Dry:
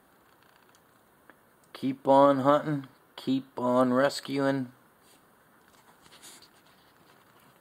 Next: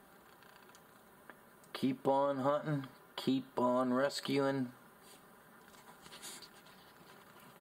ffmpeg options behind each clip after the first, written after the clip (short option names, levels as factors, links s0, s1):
-af "aecho=1:1:5:0.43,acompressor=threshold=0.0355:ratio=8"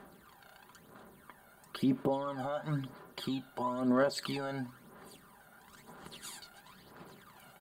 -af "alimiter=level_in=1.33:limit=0.0631:level=0:latency=1:release=17,volume=0.75,aphaser=in_gain=1:out_gain=1:delay=1.4:decay=0.61:speed=1:type=sinusoidal"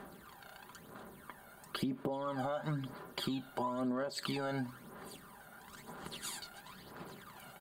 -af "acompressor=threshold=0.0158:ratio=16,volume=1.5"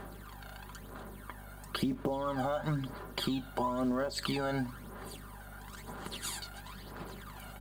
-filter_complex "[0:a]aeval=exprs='val(0)+0.00224*(sin(2*PI*50*n/s)+sin(2*PI*2*50*n/s)/2+sin(2*PI*3*50*n/s)/3+sin(2*PI*4*50*n/s)/4+sin(2*PI*5*50*n/s)/5)':c=same,asplit=2[s0][s1];[s1]acrusher=bits=5:mode=log:mix=0:aa=0.000001,volume=0.562[s2];[s0][s2]amix=inputs=2:normalize=0"